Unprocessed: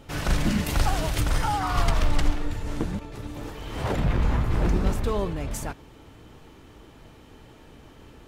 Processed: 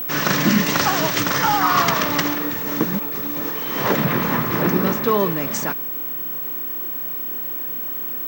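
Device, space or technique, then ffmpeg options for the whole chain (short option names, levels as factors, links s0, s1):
old television with a line whistle: -filter_complex "[0:a]asettb=1/sr,asplit=3[s0][s1][s2];[s0]atrim=end=4.624[s3];[s1]atrim=start=4.62:end=5.2,asetpts=PTS-STARTPTS,afade=t=in:d=0.004:c=qsin,afade=t=out:st=0.576:d=0.004:c=qsin,highshelf=f=7100:g=-10[s4];[s2]atrim=start=5.196[s5];[s3][s4]acrossfade=d=0.004:c1=hsin:c2=qsin[s6];[s6][s5]acrossfade=d=0.004:c1=qsin:c2=hsin,highpass=f=160:w=0.5412,highpass=f=160:w=1.3066,equalizer=f=750:t=q:w=4:g=-5,equalizer=f=1100:t=q:w=4:g=5,equalizer=f=1800:t=q:w=4:g=5,equalizer=f=5800:t=q:w=4:g=6,lowpass=f=7300:w=0.5412,lowpass=f=7300:w=1.3066,aeval=exprs='val(0)+0.0224*sin(2*PI*15734*n/s)':c=same,volume=2.82"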